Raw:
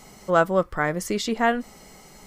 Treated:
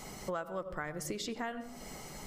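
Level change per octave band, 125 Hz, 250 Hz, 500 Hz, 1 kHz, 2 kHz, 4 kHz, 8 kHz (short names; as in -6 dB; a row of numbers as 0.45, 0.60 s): -14.0, -14.5, -16.5, -17.0, -16.0, -10.0, -7.5 dB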